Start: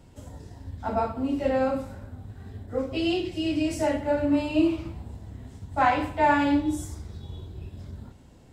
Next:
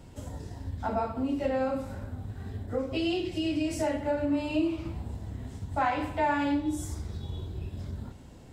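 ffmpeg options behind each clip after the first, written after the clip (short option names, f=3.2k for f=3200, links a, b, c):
-af "acompressor=threshold=-34dB:ratio=2,volume=3dB"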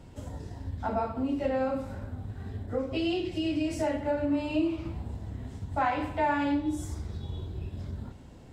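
-af "highshelf=f=6.3k:g=-6.5"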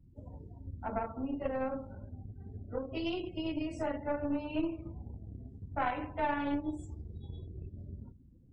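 -af "aeval=exprs='0.168*(cos(1*acos(clip(val(0)/0.168,-1,1)))-cos(1*PI/2))+0.0422*(cos(2*acos(clip(val(0)/0.168,-1,1)))-cos(2*PI/2))+0.0133*(cos(3*acos(clip(val(0)/0.168,-1,1)))-cos(3*PI/2))+0.00376*(cos(7*acos(clip(val(0)/0.168,-1,1)))-cos(7*PI/2))':c=same,afftdn=nr=29:nf=-47,volume=-4dB"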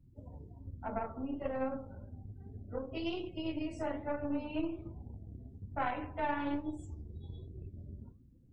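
-af "flanger=delay=7.4:depth=6.6:regen=81:speed=1.2:shape=sinusoidal,volume=2.5dB"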